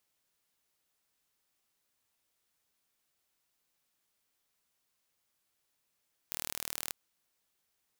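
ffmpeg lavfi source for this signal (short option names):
-f lavfi -i "aevalsrc='0.335*eq(mod(n,1128),0)':d=0.61:s=44100"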